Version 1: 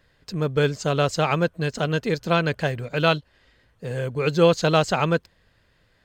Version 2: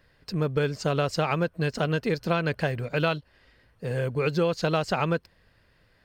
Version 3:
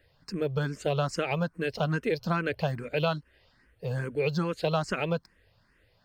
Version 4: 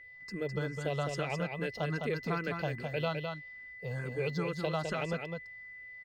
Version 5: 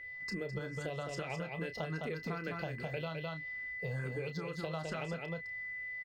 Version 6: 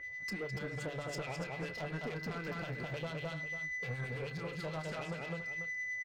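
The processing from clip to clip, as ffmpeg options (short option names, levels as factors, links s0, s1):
-af "superequalizer=13b=0.708:15b=0.501,acompressor=threshold=0.0891:ratio=6"
-filter_complex "[0:a]asplit=2[s0][s1];[s1]afreqshift=2.4[s2];[s0][s2]amix=inputs=2:normalize=1"
-filter_complex "[0:a]aeval=exprs='val(0)+0.00708*sin(2*PI*2000*n/s)':c=same,asplit=2[s0][s1];[s1]aecho=0:1:208:0.562[s2];[s0][s2]amix=inputs=2:normalize=0,volume=0.473"
-filter_complex "[0:a]acompressor=threshold=0.01:ratio=10,asplit=2[s0][s1];[s1]adelay=31,volume=0.316[s2];[s0][s2]amix=inputs=2:normalize=0,volume=1.58"
-filter_complex "[0:a]asoftclip=type=tanh:threshold=0.0106,acrossover=split=1600[s0][s1];[s0]aeval=exprs='val(0)*(1-0.7/2+0.7/2*cos(2*PI*9.2*n/s))':c=same[s2];[s1]aeval=exprs='val(0)*(1-0.7/2-0.7/2*cos(2*PI*9.2*n/s))':c=same[s3];[s2][s3]amix=inputs=2:normalize=0,asplit=2[s4][s5];[s5]aecho=0:1:286:0.335[s6];[s4][s6]amix=inputs=2:normalize=0,volume=2"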